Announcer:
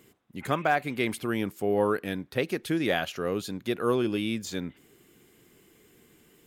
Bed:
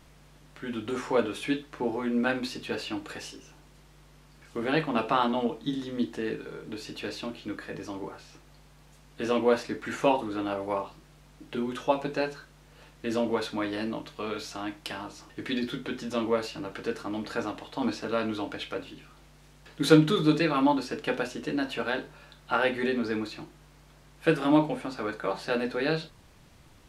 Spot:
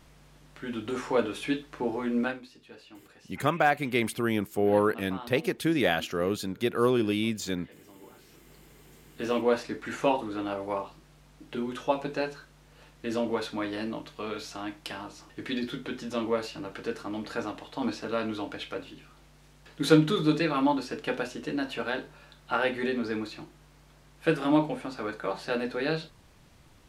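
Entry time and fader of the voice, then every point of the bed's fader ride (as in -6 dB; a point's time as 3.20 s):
2.95 s, +1.5 dB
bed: 2.23 s -0.5 dB
2.46 s -17 dB
7.94 s -17 dB
8.53 s -1.5 dB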